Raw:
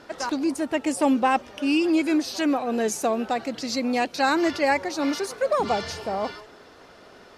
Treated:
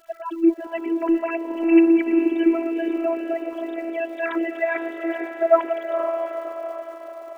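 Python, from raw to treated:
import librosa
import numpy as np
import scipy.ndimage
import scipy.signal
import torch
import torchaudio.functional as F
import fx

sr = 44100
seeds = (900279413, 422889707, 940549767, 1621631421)

p1 = fx.sine_speech(x, sr)
p2 = fx.dmg_crackle(p1, sr, seeds[0], per_s=210.0, level_db=-46.0)
p3 = p2 + fx.echo_diffused(p2, sr, ms=473, feedback_pct=55, wet_db=-7, dry=0)
p4 = fx.robotise(p3, sr, hz=332.0)
y = p4 * 10.0 ** (3.0 / 20.0)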